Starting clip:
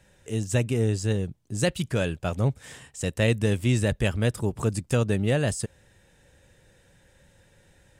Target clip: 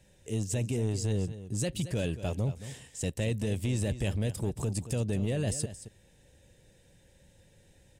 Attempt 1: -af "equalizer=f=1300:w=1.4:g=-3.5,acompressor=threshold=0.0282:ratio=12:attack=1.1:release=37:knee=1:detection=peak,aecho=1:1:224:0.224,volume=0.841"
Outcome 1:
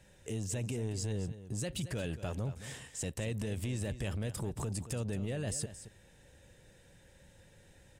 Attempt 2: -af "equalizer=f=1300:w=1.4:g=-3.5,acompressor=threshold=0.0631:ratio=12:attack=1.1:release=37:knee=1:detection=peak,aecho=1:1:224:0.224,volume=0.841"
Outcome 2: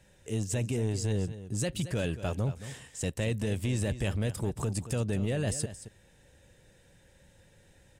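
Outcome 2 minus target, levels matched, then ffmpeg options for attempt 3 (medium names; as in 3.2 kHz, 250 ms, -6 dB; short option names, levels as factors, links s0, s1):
1 kHz band +3.0 dB
-af "equalizer=f=1300:w=1.4:g=-11.5,acompressor=threshold=0.0631:ratio=12:attack=1.1:release=37:knee=1:detection=peak,aecho=1:1:224:0.224,volume=0.841"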